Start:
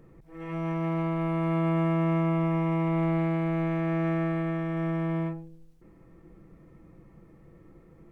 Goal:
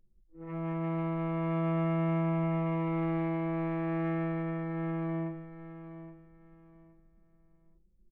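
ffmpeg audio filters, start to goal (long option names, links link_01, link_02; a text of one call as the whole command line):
ffmpeg -i in.wav -af "anlmdn=2.51,aecho=1:1:819|1638|2457:0.237|0.0593|0.0148,volume=-4dB" out.wav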